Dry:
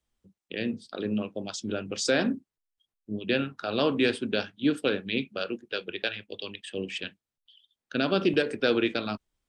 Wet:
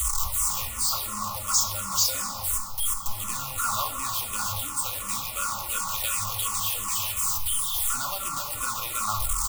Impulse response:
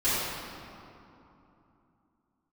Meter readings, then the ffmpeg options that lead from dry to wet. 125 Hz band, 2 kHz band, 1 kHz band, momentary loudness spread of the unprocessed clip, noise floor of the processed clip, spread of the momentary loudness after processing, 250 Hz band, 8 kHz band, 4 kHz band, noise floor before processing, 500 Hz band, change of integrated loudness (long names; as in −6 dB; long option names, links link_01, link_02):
0.0 dB, −5.0 dB, +9.0 dB, 11 LU, −35 dBFS, 6 LU, −18.0 dB, +19.5 dB, +3.0 dB, below −85 dBFS, −16.5 dB, +3.5 dB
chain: -filter_complex "[0:a]aeval=exprs='val(0)+0.5*0.0531*sgn(val(0))':channel_layout=same,acrusher=bits=3:mode=log:mix=0:aa=0.000001,asuperstop=centerf=1600:order=20:qfactor=7.2,lowshelf=frequency=420:gain=5,aecho=1:1:3.6:0.41,acompressor=threshold=-19dB:ratio=6,firequalizer=gain_entry='entry(110,0);entry(220,-22);entry(360,-27);entry(740,-2);entry(1100,13);entry(1700,-6);entry(7400,15)':delay=0.05:min_phase=1,asplit=2[link_01][link_02];[1:a]atrim=start_sample=2205,adelay=14[link_03];[link_02][link_03]afir=irnorm=-1:irlink=0,volume=-16.5dB[link_04];[link_01][link_04]amix=inputs=2:normalize=0,asplit=2[link_05][link_06];[link_06]afreqshift=-2.8[link_07];[link_05][link_07]amix=inputs=2:normalize=1,volume=-3dB"